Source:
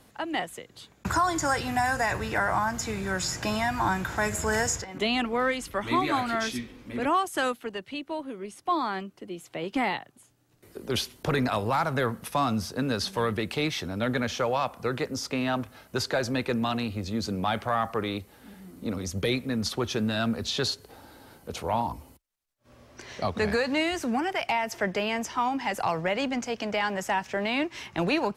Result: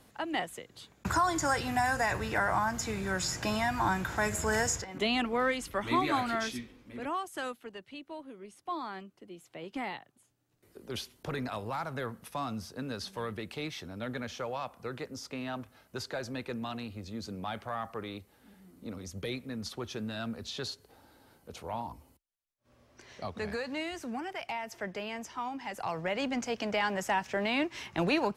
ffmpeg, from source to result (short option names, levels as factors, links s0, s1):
-af "volume=1.68,afade=t=out:st=6.26:d=0.59:silence=0.446684,afade=t=in:st=25.73:d=0.73:silence=0.421697"